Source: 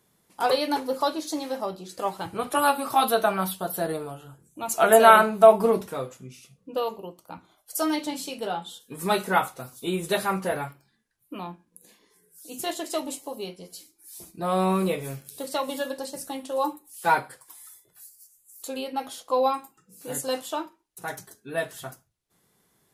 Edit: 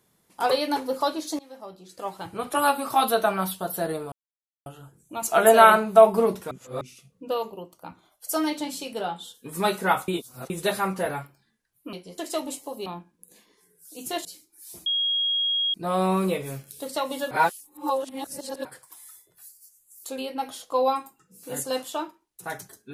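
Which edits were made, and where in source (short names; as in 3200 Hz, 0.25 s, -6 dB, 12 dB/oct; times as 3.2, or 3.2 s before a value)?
1.39–2.66 fade in, from -19 dB
4.12 insert silence 0.54 s
5.97–6.27 reverse
9.54–9.96 reverse
11.39–12.78 swap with 13.46–13.71
14.32 add tone 3280 Hz -21.5 dBFS 0.88 s
15.89–17.23 reverse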